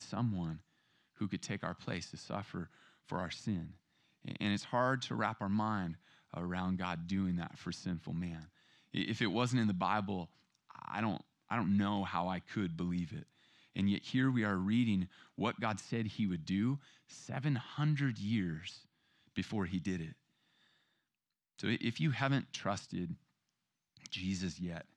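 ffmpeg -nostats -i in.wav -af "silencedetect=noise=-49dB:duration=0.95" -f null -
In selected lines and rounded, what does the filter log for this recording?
silence_start: 20.13
silence_end: 21.58 | silence_duration: 1.46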